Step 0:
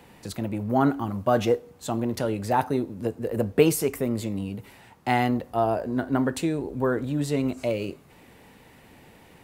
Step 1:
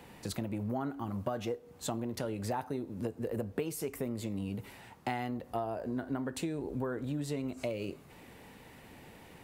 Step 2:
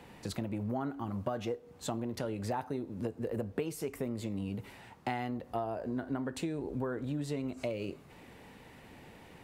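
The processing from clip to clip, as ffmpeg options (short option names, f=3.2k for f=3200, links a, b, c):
-af "acompressor=threshold=-30dB:ratio=12,volume=-1.5dB"
-af "highshelf=f=9.5k:g=-8.5"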